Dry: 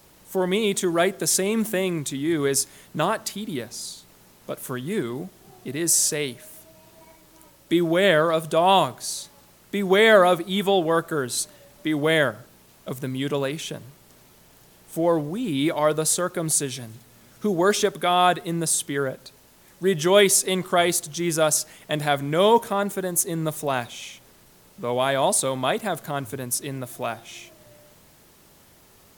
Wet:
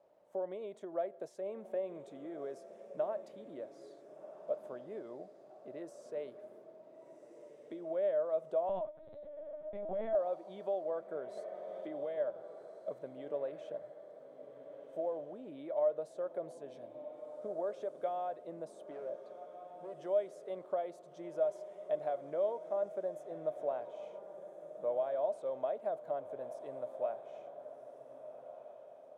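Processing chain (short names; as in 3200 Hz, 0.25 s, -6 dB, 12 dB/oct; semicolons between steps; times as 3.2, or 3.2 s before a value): compressor 10:1, threshold -24 dBFS, peak gain reduction 14 dB; 18.91–20 hard clip -30.5 dBFS, distortion -22 dB; band-pass 600 Hz, Q 6.5; diffused feedback echo 1.446 s, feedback 46%, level -11.5 dB; 8.69–10.15 LPC vocoder at 8 kHz pitch kept; 11.37–12.18 three-band squash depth 70%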